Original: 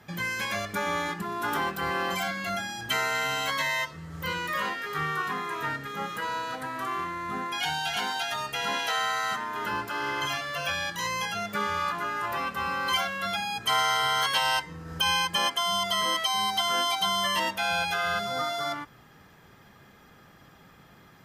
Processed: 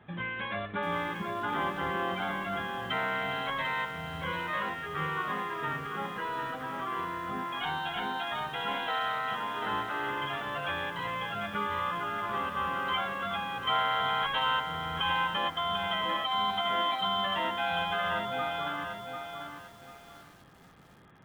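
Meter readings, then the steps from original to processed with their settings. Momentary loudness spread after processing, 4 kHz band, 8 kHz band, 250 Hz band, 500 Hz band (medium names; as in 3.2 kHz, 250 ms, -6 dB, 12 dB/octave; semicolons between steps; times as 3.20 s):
7 LU, -6.0 dB, under -20 dB, -1.5 dB, -1.5 dB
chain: peaking EQ 2.5 kHz -3.5 dB 0.72 oct; in parallel at -10.5 dB: sample-and-hold 10×; on the sum: resampled via 8 kHz; bit-crushed delay 744 ms, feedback 35%, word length 8-bit, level -6 dB; trim -4.5 dB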